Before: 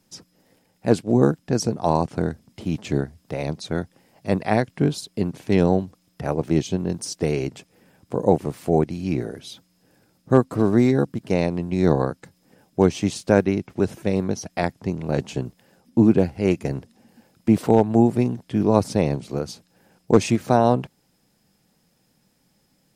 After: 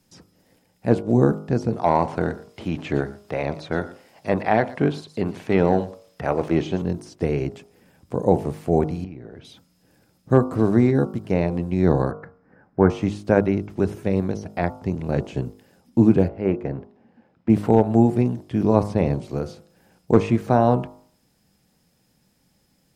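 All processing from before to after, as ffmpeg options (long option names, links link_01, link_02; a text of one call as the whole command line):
ffmpeg -i in.wav -filter_complex "[0:a]asettb=1/sr,asplit=3[link_01][link_02][link_03];[link_01]atrim=end=1.734[link_04];[link_02]atrim=start=1.73:end=6.82,asetpts=PTS-STARTPTS,afade=type=in:duration=0.004:curve=qsin,afade=type=out:start_time=5.086:duration=0.004:curve=qsin,asplit=2[link_05][link_06];[link_06]highpass=frequency=720:poles=1,volume=12dB,asoftclip=type=tanh:threshold=-4dB[link_07];[link_05][link_07]amix=inputs=2:normalize=0,lowpass=frequency=5800:poles=1,volume=-6dB,aecho=1:1:115:0.1,atrim=end_sample=224469[link_08];[link_03]atrim=start=6.816[link_09];[link_04][link_08]acrossfade=duration=0.004:curve1=hsin:curve2=qsin[link_10];[link_10][link_09]acrossfade=duration=0.004:curve1=qsin:curve2=hsin,asettb=1/sr,asplit=3[link_11][link_12][link_13];[link_11]atrim=end=9.044[link_14];[link_12]atrim=start=9.04:end=9.45,asetpts=PTS-STARTPTS,afade=type=in:duration=0.004:curve=qsin,afade=type=out:start_time=0.406:duration=0.004:curve=qsin,lowpass=2700,acompressor=threshold=-34dB:ratio=8:attack=3.2:release=140:knee=1:detection=peak[link_15];[link_13]atrim=start=9.446[link_16];[link_14][link_15]acrossfade=duration=0.004:curve1=hsin:curve2=qsin[link_17];[link_17][link_16]acrossfade=duration=0.004:curve1=qsin:curve2=hsin,asettb=1/sr,asplit=3[link_18][link_19][link_20];[link_18]atrim=end=12.114[link_21];[link_19]atrim=start=12.11:end=12.9,asetpts=PTS-STARTPTS,afade=type=in:duration=0.004:curve=qsin,afade=type=out:start_time=0.786:duration=0.004:curve=qsin,lowpass=frequency=4700:width=0.5412,lowpass=frequency=4700:width=1.3066,highshelf=frequency=2300:width_type=q:width=3:gain=-13.5[link_22];[link_20]atrim=start=12.896[link_23];[link_21][link_22]acrossfade=duration=0.004:curve1=hsin:curve2=qsin[link_24];[link_24][link_23]acrossfade=duration=0.004:curve1=qsin:curve2=hsin,asettb=1/sr,asplit=3[link_25][link_26][link_27];[link_25]atrim=end=16.284[link_28];[link_26]atrim=start=16.28:end=17.5,asetpts=PTS-STARTPTS,afade=type=in:duration=0.004:curve=qsin,afade=type=out:start_time=1.216:duration=0.004:curve=qsin,lowpass=1800,lowshelf=frequency=110:gain=-10.5[link_29];[link_27]atrim=start=17.496[link_30];[link_28][link_29]acrossfade=duration=0.004:curve1=hsin:curve2=qsin[link_31];[link_31][link_30]acrossfade=duration=0.004:curve1=qsin:curve2=hsin,bandreject=frequency=51.38:width_type=h:width=4,bandreject=frequency=102.76:width_type=h:width=4,bandreject=frequency=154.14:width_type=h:width=4,bandreject=frequency=205.52:width_type=h:width=4,bandreject=frequency=256.9:width_type=h:width=4,bandreject=frequency=308.28:width_type=h:width=4,bandreject=frequency=359.66:width_type=h:width=4,bandreject=frequency=411.04:width_type=h:width=4,bandreject=frequency=462.42:width_type=h:width=4,bandreject=frequency=513.8:width_type=h:width=4,bandreject=frequency=565.18:width_type=h:width=4,bandreject=frequency=616.56:width_type=h:width=4,bandreject=frequency=667.94:width_type=h:width=4,bandreject=frequency=719.32:width_type=h:width=4,bandreject=frequency=770.7:width_type=h:width=4,bandreject=frequency=822.08:width_type=h:width=4,bandreject=frequency=873.46:width_type=h:width=4,bandreject=frequency=924.84:width_type=h:width=4,bandreject=frequency=976.22:width_type=h:width=4,bandreject=frequency=1027.6:width_type=h:width=4,bandreject=frequency=1078.98:width_type=h:width=4,bandreject=frequency=1130.36:width_type=h:width=4,bandreject=frequency=1181.74:width_type=h:width=4,bandreject=frequency=1233.12:width_type=h:width=4,bandreject=frequency=1284.5:width_type=h:width=4,bandreject=frequency=1335.88:width_type=h:width=4,bandreject=frequency=1387.26:width_type=h:width=4,bandreject=frequency=1438.64:width_type=h:width=4,acrossover=split=2700[link_32][link_33];[link_33]acompressor=threshold=-49dB:ratio=4:attack=1:release=60[link_34];[link_32][link_34]amix=inputs=2:normalize=0,equalizer=frequency=64:width=1:gain=6" out.wav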